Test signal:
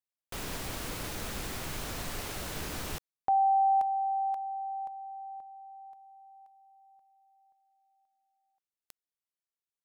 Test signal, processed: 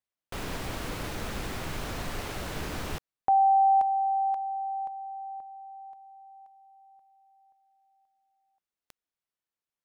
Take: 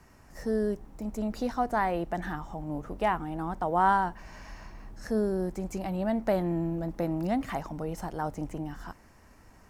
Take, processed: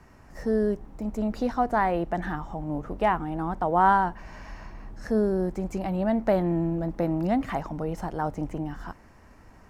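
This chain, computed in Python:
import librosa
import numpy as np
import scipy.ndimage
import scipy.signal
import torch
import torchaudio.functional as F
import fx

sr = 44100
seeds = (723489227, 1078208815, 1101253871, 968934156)

y = fx.high_shelf(x, sr, hz=4600.0, db=-9.5)
y = y * 10.0 ** (4.0 / 20.0)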